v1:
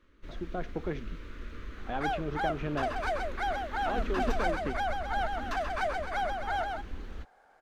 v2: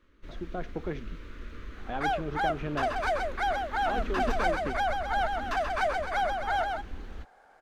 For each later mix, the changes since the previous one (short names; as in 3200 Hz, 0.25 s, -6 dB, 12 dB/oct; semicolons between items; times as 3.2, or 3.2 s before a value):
second sound +3.5 dB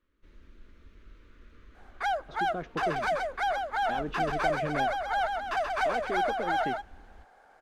speech: entry +2.00 s; first sound -12.0 dB